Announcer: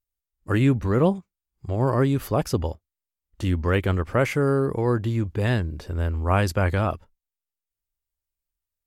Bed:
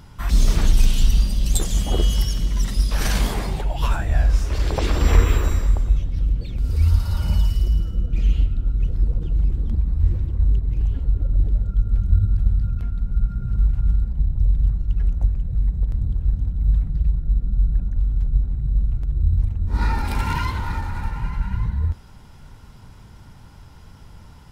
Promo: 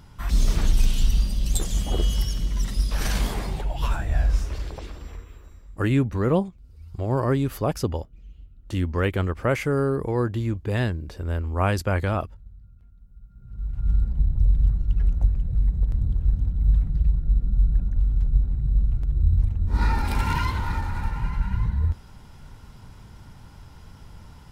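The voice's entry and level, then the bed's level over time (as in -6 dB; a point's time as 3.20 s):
5.30 s, -1.5 dB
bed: 4.40 s -4 dB
5.25 s -27 dB
13.24 s -27 dB
13.96 s -1 dB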